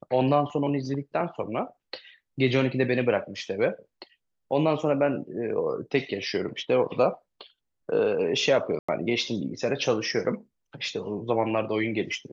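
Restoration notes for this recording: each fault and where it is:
8.79–8.88 gap 95 ms

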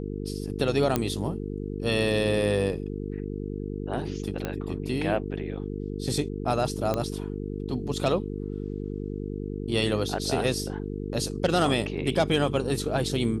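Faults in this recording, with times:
buzz 50 Hz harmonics 9 -33 dBFS
0.96 pop -9 dBFS
4.45 pop -16 dBFS
6.94 pop -14 dBFS

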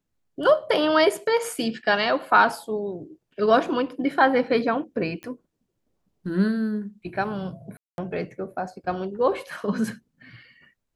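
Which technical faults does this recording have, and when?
5.23 pop -23 dBFS
7.77–7.98 gap 0.211 s

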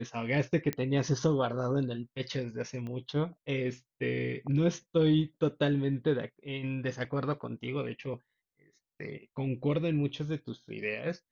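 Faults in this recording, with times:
0.73 pop -17 dBFS
2.87 pop -30 dBFS

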